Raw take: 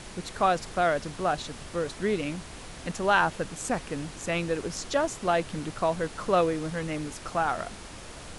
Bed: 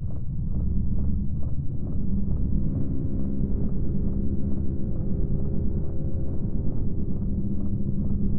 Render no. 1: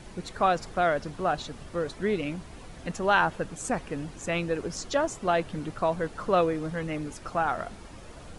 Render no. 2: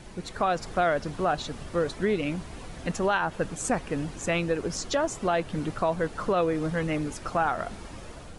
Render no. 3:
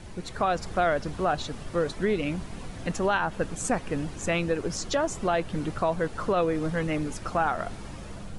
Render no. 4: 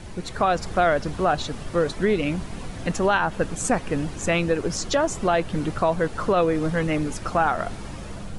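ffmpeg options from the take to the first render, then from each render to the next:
ffmpeg -i in.wav -af "afftdn=noise_reduction=9:noise_floor=-44" out.wav
ffmpeg -i in.wav -af "dynaudnorm=framelen=110:gausssize=7:maxgain=4dB,alimiter=limit=-15.5dB:level=0:latency=1:release=243" out.wav
ffmpeg -i in.wav -i bed.wav -filter_complex "[1:a]volume=-18dB[link_01];[0:a][link_01]amix=inputs=2:normalize=0" out.wav
ffmpeg -i in.wav -af "volume=4.5dB" out.wav

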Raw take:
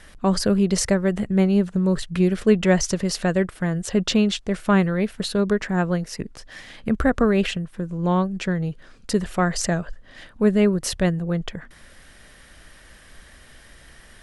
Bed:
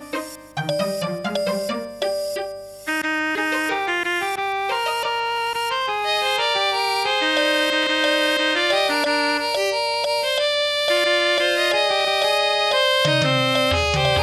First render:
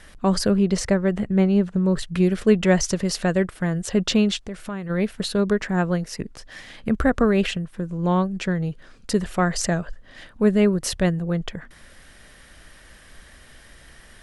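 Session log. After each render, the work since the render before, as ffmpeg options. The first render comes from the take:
ffmpeg -i in.wav -filter_complex "[0:a]asettb=1/sr,asplit=3[link_01][link_02][link_03];[link_01]atrim=end=0.504[link_04];[link_02]atrim=start=0.5:end=1.97,asetpts=PTS-STARTPTS,afade=type=in:duration=0.004:curve=qsin,afade=type=out:start_time=1.466:duration=0.004:curve=qsin,lowpass=frequency=3700:poles=1[link_05];[link_03]atrim=start=1.966[link_06];[link_04][link_05]acrossfade=duration=0.004:curve1=hsin:curve2=qsin[link_07];[link_07][link_06]acrossfade=duration=0.004:curve1=qsin:curve2=hsin,asplit=3[link_08][link_09][link_10];[link_08]afade=type=out:start_time=4.37:duration=0.02[link_11];[link_09]acompressor=threshold=-31dB:ratio=3:attack=3.2:release=140:knee=1:detection=peak,afade=type=in:start_time=4.37:duration=0.02,afade=type=out:start_time=4.89:duration=0.02[link_12];[link_10]afade=type=in:start_time=4.89:duration=0.02[link_13];[link_11][link_12][link_13]amix=inputs=3:normalize=0" out.wav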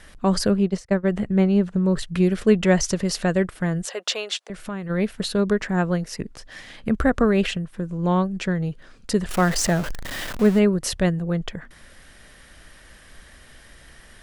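ffmpeg -i in.wav -filter_complex "[0:a]asplit=3[link_01][link_02][link_03];[link_01]afade=type=out:start_time=0.53:duration=0.02[link_04];[link_02]agate=range=-33dB:threshold=-17dB:ratio=3:release=100:detection=peak,afade=type=in:start_time=0.53:duration=0.02,afade=type=out:start_time=1.03:duration=0.02[link_05];[link_03]afade=type=in:start_time=1.03:duration=0.02[link_06];[link_04][link_05][link_06]amix=inputs=3:normalize=0,asettb=1/sr,asplit=3[link_07][link_08][link_09];[link_07]atrim=end=3.854[link_10];[link_08]atrim=start=3.85:end=4.5,asetpts=PTS-STARTPTS,afade=type=in:duration=0.004:curve=qsin,afade=type=out:start_time=0.646:duration=0.004:curve=qsin,highpass=frequency=510:width=0.5412,highpass=frequency=510:width=1.3066[link_11];[link_09]atrim=start=4.496[link_12];[link_10][link_11]acrossfade=duration=0.004:curve1=hsin:curve2=qsin[link_13];[link_13][link_12]acrossfade=duration=0.004:curve1=qsin:curve2=hsin,asettb=1/sr,asplit=3[link_14][link_15][link_16];[link_14]atrim=end=9.294[link_17];[link_15]atrim=start=9.29:end=10.59,asetpts=PTS-STARTPTS,afade=type=in:duration=0.004:curve=qsin,afade=type=out:start_time=1.296:duration=0.004:curve=qsin,aeval=exprs='val(0)+0.5*0.0501*sgn(val(0))':channel_layout=same[link_18];[link_16]atrim=start=10.586[link_19];[link_17][link_18]acrossfade=duration=0.004:curve1=hsin:curve2=qsin[link_20];[link_20][link_19]acrossfade=duration=0.004:curve1=qsin:curve2=hsin" out.wav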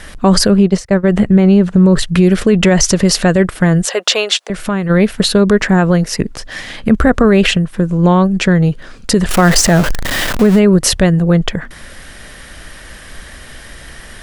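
ffmpeg -i in.wav -af "alimiter=level_in=14dB:limit=-1dB:release=50:level=0:latency=1" out.wav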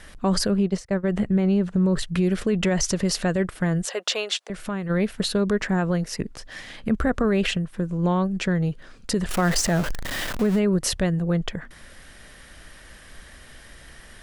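ffmpeg -i in.wav -af "volume=-12dB" out.wav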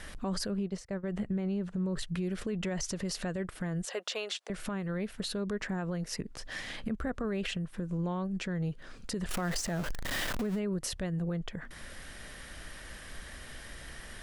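ffmpeg -i in.wav -af "acompressor=threshold=-36dB:ratio=2,alimiter=level_in=1.5dB:limit=-24dB:level=0:latency=1:release=80,volume=-1.5dB" out.wav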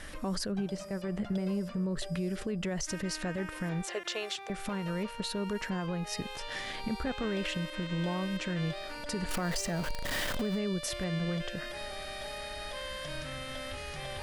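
ffmpeg -i in.wav -i bed.wav -filter_complex "[1:a]volume=-22.5dB[link_01];[0:a][link_01]amix=inputs=2:normalize=0" out.wav

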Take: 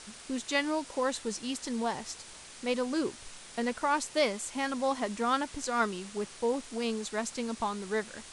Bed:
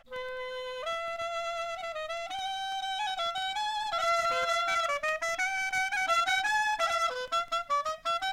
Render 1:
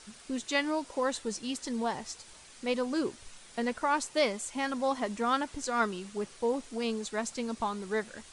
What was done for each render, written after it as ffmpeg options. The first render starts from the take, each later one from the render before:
ffmpeg -i in.wav -af "afftdn=noise_reduction=6:noise_floor=-49" out.wav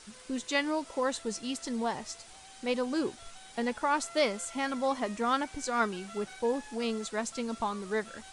ffmpeg -i in.wav -i bed.wav -filter_complex "[1:a]volume=-22dB[link_01];[0:a][link_01]amix=inputs=2:normalize=0" out.wav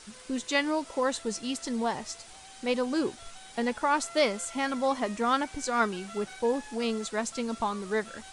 ffmpeg -i in.wav -af "volume=2.5dB" out.wav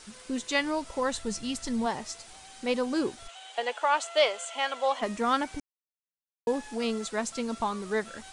ffmpeg -i in.wav -filter_complex "[0:a]asplit=3[link_01][link_02][link_03];[link_01]afade=type=out:start_time=0.49:duration=0.02[link_04];[link_02]asubboost=boost=9:cutoff=150,afade=type=in:start_time=0.49:duration=0.02,afade=type=out:start_time=1.85:duration=0.02[link_05];[link_03]afade=type=in:start_time=1.85:duration=0.02[link_06];[link_04][link_05][link_06]amix=inputs=3:normalize=0,asplit=3[link_07][link_08][link_09];[link_07]afade=type=out:start_time=3.27:duration=0.02[link_10];[link_08]highpass=frequency=450:width=0.5412,highpass=frequency=450:width=1.3066,equalizer=frequency=690:width_type=q:width=4:gain=5,equalizer=frequency=3000:width_type=q:width=4:gain=9,equalizer=frequency=5300:width_type=q:width=4:gain=-6,lowpass=frequency=8300:width=0.5412,lowpass=frequency=8300:width=1.3066,afade=type=in:start_time=3.27:duration=0.02,afade=type=out:start_time=5.01:duration=0.02[link_11];[link_09]afade=type=in:start_time=5.01:duration=0.02[link_12];[link_10][link_11][link_12]amix=inputs=3:normalize=0,asplit=3[link_13][link_14][link_15];[link_13]atrim=end=5.6,asetpts=PTS-STARTPTS,afade=type=out:start_time=5.596:duration=0.004:curve=hsin[link_16];[link_14]atrim=start=5.6:end=6.47,asetpts=PTS-STARTPTS,volume=0[link_17];[link_15]atrim=start=6.47,asetpts=PTS-STARTPTS,afade=type=in:duration=0.004:curve=hsin[link_18];[link_16][link_17][link_18]concat=n=3:v=0:a=1" out.wav

